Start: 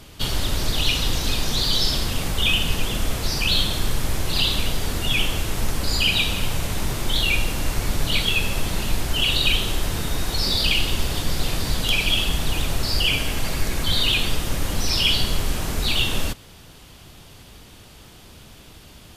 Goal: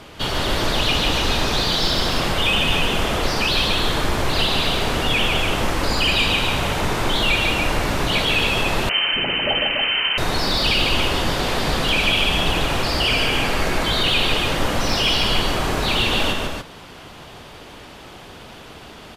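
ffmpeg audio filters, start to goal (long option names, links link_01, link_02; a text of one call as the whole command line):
ffmpeg -i in.wav -filter_complex "[0:a]asplit=2[link_01][link_02];[link_02]highpass=frequency=720:poles=1,volume=17dB,asoftclip=type=tanh:threshold=-5dB[link_03];[link_01][link_03]amix=inputs=2:normalize=0,lowpass=frequency=1100:poles=1,volume=-6dB,aecho=1:1:148.7|285.7:0.631|0.562,asettb=1/sr,asplit=3[link_04][link_05][link_06];[link_04]atrim=end=8.894[link_07];[link_05]atrim=start=8.89:end=10.18,asetpts=PTS-STARTPTS,afade=type=in:duration=0.004:curve=qsin,afade=type=out:start_time=1.286:duration=0.004:curve=qsin,lowpass=frequency=2600:width_type=q:width=0.5098,lowpass=frequency=2600:width_type=q:width=0.6013,lowpass=frequency=2600:width_type=q:width=0.9,lowpass=frequency=2600:width_type=q:width=2.563,afreqshift=-3100[link_08];[link_06]atrim=start=10.176[link_09];[link_07][link_08]acrossfade=duration=0.004:curve1=hsin:curve2=qsin[link_10];[link_10][link_09]acrossfade=duration=0.004:curve1=qsin:curve2=hsin,volume=1.5dB" out.wav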